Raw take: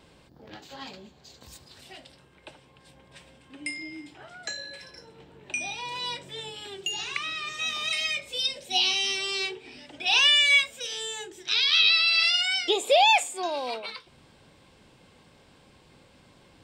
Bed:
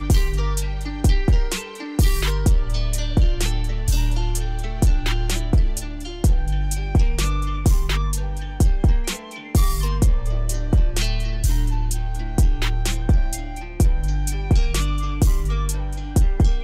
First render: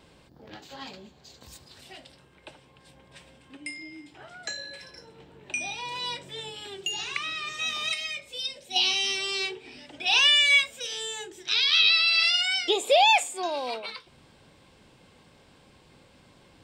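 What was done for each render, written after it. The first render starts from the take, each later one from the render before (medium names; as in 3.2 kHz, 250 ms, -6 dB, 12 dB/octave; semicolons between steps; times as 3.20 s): 3.57–4.14 s: gain -3.5 dB; 7.94–8.76 s: gain -5 dB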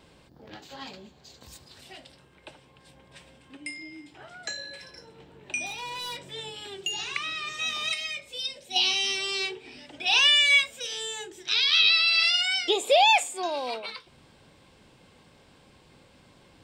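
5.66–6.30 s: overload inside the chain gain 32.5 dB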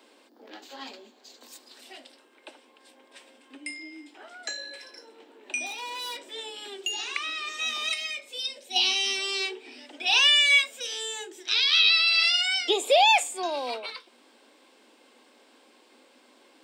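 steep high-pass 230 Hz 96 dB/octave; treble shelf 10 kHz +3.5 dB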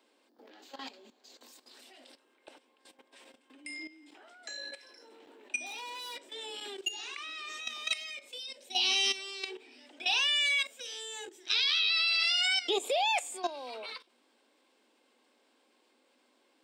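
level held to a coarse grid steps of 14 dB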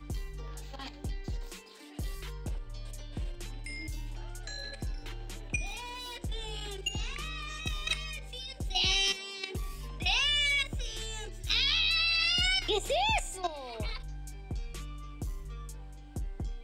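add bed -20.5 dB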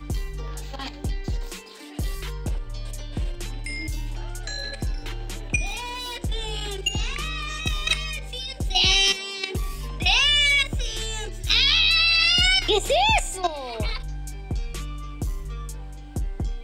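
trim +9 dB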